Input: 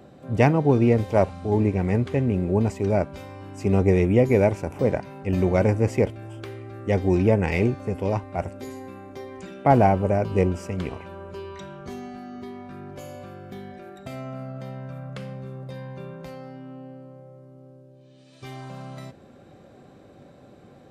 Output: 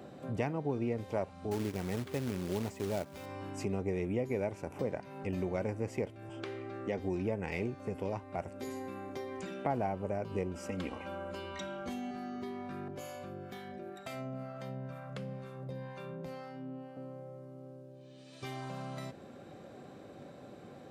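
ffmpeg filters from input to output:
ffmpeg -i in.wav -filter_complex "[0:a]asettb=1/sr,asplit=3[link_01][link_02][link_03];[link_01]atrim=end=1.514[link_04];[link_02]atrim=start=1.51:end=3.26,asetpts=PTS-STARTPTS,afade=type=in:duration=0.004:curve=qsin,afade=type=out:start_time=1.746:duration=0.004:curve=qsin,acrusher=bits=3:mode=log:mix=0:aa=0.000001[link_05];[link_03]atrim=start=3.256[link_06];[link_04][link_05]acrossfade=duration=0.004:curve1=hsin:curve2=qsin[link_07];[link_07][link_06]acrossfade=duration=0.004:curve1=qsin:curve2=hsin,asettb=1/sr,asplit=3[link_08][link_09][link_10];[link_08]atrim=end=6.294[link_11];[link_09]atrim=start=6.29:end=6.99,asetpts=PTS-STARTPTS,afade=type=in:duration=0.004:curve=qsin,afade=type=out:start_time=0.696:duration=0.004:curve=qsin,highpass=140,lowpass=6500[link_12];[link_10]atrim=start=6.986[link_13];[link_11][link_12]acrossfade=duration=0.004:curve1=hsin:curve2=qsin[link_14];[link_14][link_13]acrossfade=duration=0.004:curve1=qsin:curve2=hsin,asettb=1/sr,asplit=3[link_15][link_16][link_17];[link_15]atrim=end=10.554[link_18];[link_16]atrim=start=10.55:end=12.11,asetpts=PTS-STARTPTS,afade=type=in:duration=0.004:curve=qsin,afade=type=out:start_time=1.556:duration=0.004:curve=qsin,aecho=1:1:3.7:0.76,atrim=end_sample=68796[link_19];[link_17]atrim=start=12.106[link_20];[link_18][link_19]acrossfade=duration=0.004:curve1=hsin:curve2=qsin[link_21];[link_21][link_20]acrossfade=duration=0.004:curve1=qsin:curve2=hsin,asettb=1/sr,asplit=3[link_22][link_23][link_24];[link_22]atrim=end=12.884[link_25];[link_23]atrim=start=12.88:end=16.97,asetpts=PTS-STARTPTS,afade=type=in:duration=0.004:curve=qsin,afade=type=out:start_time=4.086:duration=0.004:curve=qsin,acrossover=split=640[link_26][link_27];[link_26]aeval=exprs='val(0)*(1-0.7/2+0.7/2*cos(2*PI*2.1*n/s))':channel_layout=same[link_28];[link_27]aeval=exprs='val(0)*(1-0.7/2-0.7/2*cos(2*PI*2.1*n/s))':channel_layout=same[link_29];[link_28][link_29]amix=inputs=2:normalize=0[link_30];[link_24]atrim=start=16.966[link_31];[link_25][link_30]acrossfade=duration=0.004:curve1=hsin:curve2=qsin[link_32];[link_32][link_31]acrossfade=duration=0.004:curve1=qsin:curve2=hsin,highpass=frequency=140:poles=1,acompressor=threshold=-38dB:ratio=2.5" out.wav

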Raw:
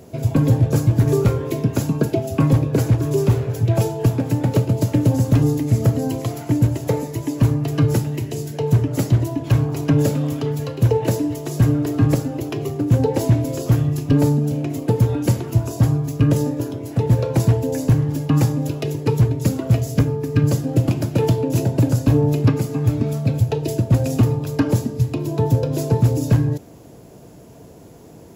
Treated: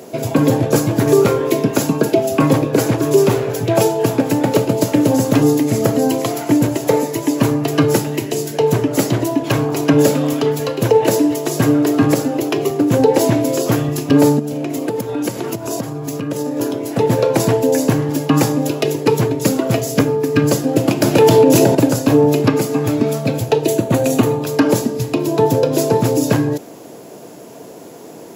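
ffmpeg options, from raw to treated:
ffmpeg -i in.wav -filter_complex "[0:a]asettb=1/sr,asplit=3[link_01][link_02][link_03];[link_01]atrim=end=14.394[link_04];[link_02]atrim=start=14.39:end=16.61,asetpts=PTS-STARTPTS,afade=type=in:duration=0.004:curve=qsin,afade=type=out:start_time=2.216:duration=0.004:curve=qsin,acompressor=threshold=-23dB:ratio=6:attack=3.2:release=140:knee=1:detection=peak[link_05];[link_03]atrim=start=16.606[link_06];[link_04][link_05]acrossfade=duration=0.004:curve1=hsin:curve2=qsin[link_07];[link_07][link_06]acrossfade=duration=0.004:curve1=qsin:curve2=hsin,asettb=1/sr,asplit=3[link_08][link_09][link_10];[link_08]atrim=end=23.654[link_11];[link_09]atrim=start=23.65:end=24.42,asetpts=PTS-STARTPTS,afade=type=in:duration=0.004:curve=qsin,afade=type=out:start_time=0.766:duration=0.004:curve=qsin,bandreject=frequency=5100:width=5.2[link_12];[link_10]atrim=start=24.416[link_13];[link_11][link_12]acrossfade=duration=0.004:curve1=hsin:curve2=qsin[link_14];[link_14][link_13]acrossfade=duration=0.004:curve1=qsin:curve2=hsin,asplit=3[link_15][link_16][link_17];[link_15]atrim=end=21.022[link_18];[link_16]atrim=start=21.018:end=21.752,asetpts=PTS-STARTPTS,volume=8.5dB[link_19];[link_17]atrim=start=21.748[link_20];[link_18][link_19]acrossfade=duration=0.004:curve1=hsin:curve2=hsin[link_21];[link_21][link_20]acrossfade=duration=0.004:curve1=hsin:curve2=hsin,highpass=280,alimiter=level_in=11dB:limit=-1dB:release=50:level=0:latency=1,volume=-1dB" out.wav

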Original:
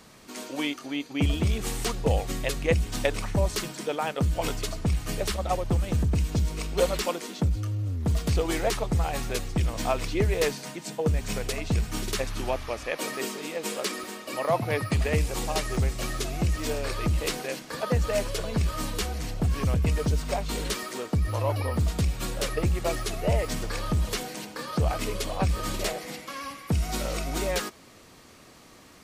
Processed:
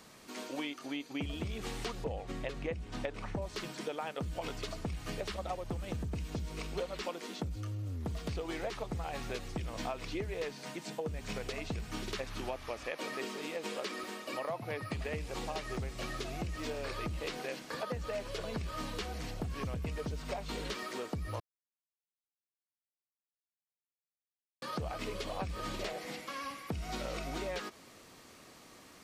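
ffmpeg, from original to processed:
ffmpeg -i in.wav -filter_complex "[0:a]asettb=1/sr,asplit=3[link_01][link_02][link_03];[link_01]atrim=end=2.044[link_04];[link_02]atrim=start=2.04:end=3.42,asetpts=PTS-STARTPTS,afade=type=in:duration=0.004:curve=qsin,afade=type=out:start_time=1.376:duration=0.004:curve=qsin,aemphasis=mode=reproduction:type=75fm[link_05];[link_03]atrim=start=3.416[link_06];[link_04][link_05]acrossfade=duration=0.004:curve1=hsin:curve2=qsin[link_07];[link_07][link_06]acrossfade=duration=0.004:curve1=qsin:curve2=hsin,asplit=3[link_08][link_09][link_10];[link_08]atrim=end=21.4,asetpts=PTS-STARTPTS,afade=type=out:start_time=21.396:duration=0.004:curve=hsin[link_11];[link_09]atrim=start=21.4:end=24.62,asetpts=PTS-STARTPTS,volume=0[link_12];[link_10]atrim=start=24.62,asetpts=PTS-STARTPTS,afade=type=in:duration=0.004:curve=hsin[link_13];[link_11][link_12][link_13]concat=n=3:v=0:a=1,acrossover=split=5300[link_14][link_15];[link_15]acompressor=threshold=-51dB:ratio=4:attack=1:release=60[link_16];[link_14][link_16]amix=inputs=2:normalize=0,lowshelf=frequency=130:gain=-6.5,acompressor=threshold=-31dB:ratio=6,volume=-3.5dB" out.wav

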